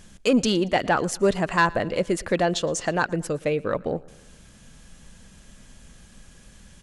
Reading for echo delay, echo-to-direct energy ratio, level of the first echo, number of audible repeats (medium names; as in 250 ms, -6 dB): 115 ms, -22.0 dB, -23.5 dB, 3